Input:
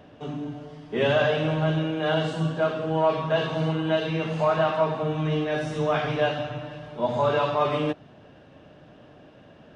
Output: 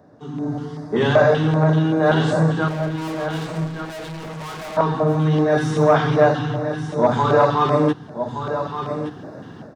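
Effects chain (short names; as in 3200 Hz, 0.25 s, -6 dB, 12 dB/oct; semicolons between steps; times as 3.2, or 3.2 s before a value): HPF 86 Hz 24 dB/oct; bell 2500 Hz -13.5 dB 0.58 oct; AGC gain up to 16.5 dB; LFO notch square 2.6 Hz 600–3100 Hz; 2.68–4.77 hard clip -30.5 dBFS, distortion -6 dB; echo 1.17 s -9.5 dB; core saturation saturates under 470 Hz; gain -1 dB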